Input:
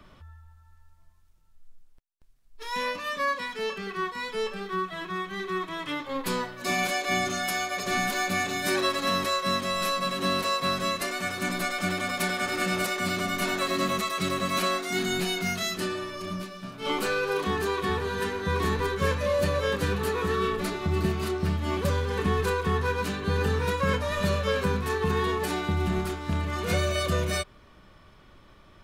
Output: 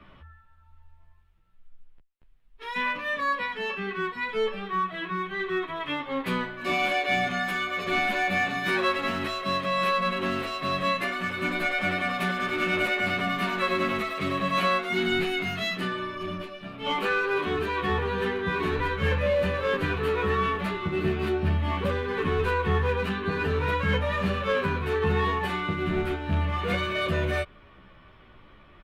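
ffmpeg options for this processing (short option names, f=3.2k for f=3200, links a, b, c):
-filter_complex "[0:a]highshelf=f=4.1k:t=q:w=1.5:g=-13,asplit=2[a][b];[b]volume=24dB,asoftclip=hard,volume=-24dB,volume=-4.5dB[c];[a][c]amix=inputs=2:normalize=0,asplit=2[d][e];[e]adelay=12,afreqshift=-0.83[f];[d][f]amix=inputs=2:normalize=1"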